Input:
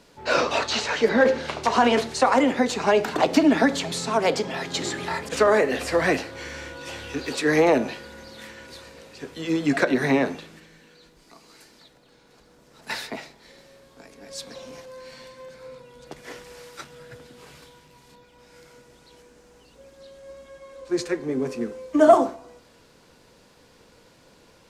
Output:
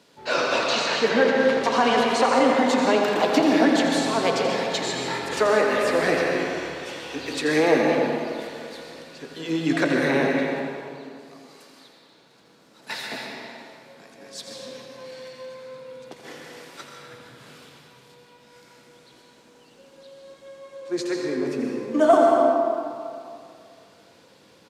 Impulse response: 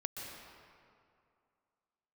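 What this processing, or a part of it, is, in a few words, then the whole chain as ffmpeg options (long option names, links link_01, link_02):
PA in a hall: -filter_complex "[0:a]highpass=130,equalizer=frequency=3500:width_type=o:width=0.58:gain=3.5,aecho=1:1:85:0.335[link_01];[1:a]atrim=start_sample=2205[link_02];[link_01][link_02]afir=irnorm=-1:irlink=0"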